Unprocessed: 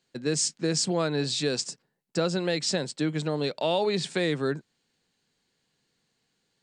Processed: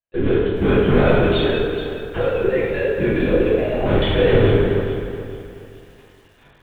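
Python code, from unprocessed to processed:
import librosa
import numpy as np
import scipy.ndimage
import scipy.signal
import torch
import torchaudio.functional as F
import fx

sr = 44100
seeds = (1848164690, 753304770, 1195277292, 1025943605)

y = fx.sine_speech(x, sr)
y = fx.recorder_agc(y, sr, target_db=-18.0, rise_db_per_s=34.0, max_gain_db=30)
y = fx.dynamic_eq(y, sr, hz=350.0, q=3.3, threshold_db=-35.0, ratio=4.0, max_db=-4)
y = fx.level_steps(y, sr, step_db=18, at=(1.27, 3.86))
y = fx.leveller(y, sr, passes=5)
y = fx.rotary_switch(y, sr, hz=0.9, then_hz=5.0, switch_at_s=3.72)
y = fx.lpc_vocoder(y, sr, seeds[0], excitation='whisper', order=8)
y = fx.echo_feedback(y, sr, ms=155, feedback_pct=37, wet_db=-16.5)
y = fx.rev_plate(y, sr, seeds[1], rt60_s=1.7, hf_ratio=0.65, predelay_ms=0, drr_db=-8.0)
y = fx.echo_crushed(y, sr, ms=426, feedback_pct=35, bits=7, wet_db=-11)
y = y * 10.0 ** (-5.5 / 20.0)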